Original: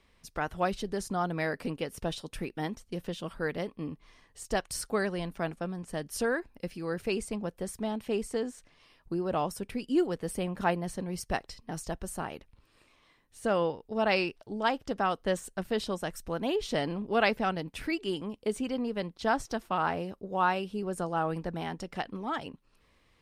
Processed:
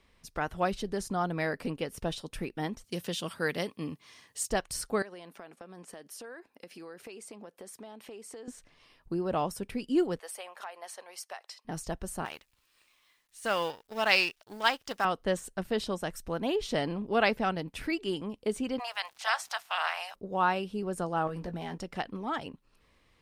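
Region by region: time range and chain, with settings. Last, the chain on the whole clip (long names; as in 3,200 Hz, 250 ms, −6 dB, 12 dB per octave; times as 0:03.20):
0:02.84–0:04.50: high-pass filter 90 Hz 24 dB per octave + high-shelf EQ 2,400 Hz +12 dB
0:05.02–0:08.48: high-pass filter 330 Hz + downward compressor 8 to 1, threshold −42 dBFS
0:10.19–0:11.65: high-pass filter 650 Hz 24 dB per octave + downward compressor 16 to 1, threshold −36 dBFS
0:12.25–0:15.05: mu-law and A-law mismatch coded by A + tilt shelving filter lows −9 dB, about 810 Hz
0:18.78–0:20.14: ceiling on every frequency bin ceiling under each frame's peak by 20 dB + Chebyshev high-pass filter 690 Hz, order 4 + surface crackle 190 per second −48 dBFS
0:21.27–0:21.78: leveller curve on the samples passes 1 + downward compressor, threshold −34 dBFS + double-tracking delay 17 ms −8 dB
whole clip: no processing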